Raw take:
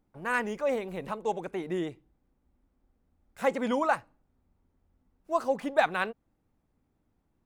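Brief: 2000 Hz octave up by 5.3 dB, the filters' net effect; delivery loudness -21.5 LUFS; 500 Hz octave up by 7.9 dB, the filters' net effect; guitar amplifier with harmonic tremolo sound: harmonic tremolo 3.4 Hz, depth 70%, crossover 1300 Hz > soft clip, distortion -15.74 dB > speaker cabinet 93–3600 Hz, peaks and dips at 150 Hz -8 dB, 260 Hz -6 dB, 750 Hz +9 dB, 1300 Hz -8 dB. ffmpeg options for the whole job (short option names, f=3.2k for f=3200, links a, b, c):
-filter_complex "[0:a]equalizer=f=500:t=o:g=7,equalizer=f=2k:t=o:g=9,acrossover=split=1300[a][b];[a]aeval=exprs='val(0)*(1-0.7/2+0.7/2*cos(2*PI*3.4*n/s))':c=same[c];[b]aeval=exprs='val(0)*(1-0.7/2-0.7/2*cos(2*PI*3.4*n/s))':c=same[d];[c][d]amix=inputs=2:normalize=0,asoftclip=threshold=-16dB,highpass=93,equalizer=f=150:t=q:w=4:g=-8,equalizer=f=260:t=q:w=4:g=-6,equalizer=f=750:t=q:w=4:g=9,equalizer=f=1.3k:t=q:w=4:g=-8,lowpass=f=3.6k:w=0.5412,lowpass=f=3.6k:w=1.3066,volume=7.5dB"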